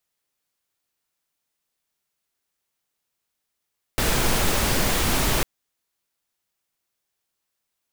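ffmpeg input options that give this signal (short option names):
-f lavfi -i "anoisesrc=c=pink:a=0.457:d=1.45:r=44100:seed=1"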